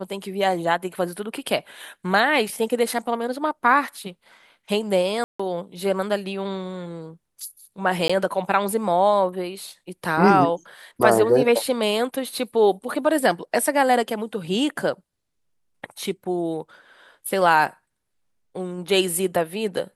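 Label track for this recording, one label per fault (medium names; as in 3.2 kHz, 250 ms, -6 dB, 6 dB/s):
5.240000	5.390000	dropout 155 ms
8.080000	8.100000	dropout 15 ms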